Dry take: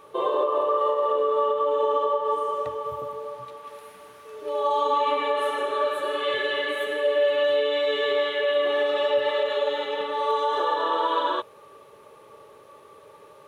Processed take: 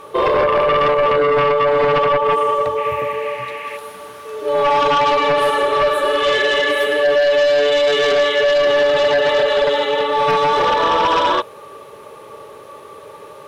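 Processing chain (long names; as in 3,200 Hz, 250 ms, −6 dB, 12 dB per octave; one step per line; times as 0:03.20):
sine wavefolder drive 8 dB, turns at −11 dBFS
0:02.76–0:03.76: noise in a band 1,700–2,800 Hz −34 dBFS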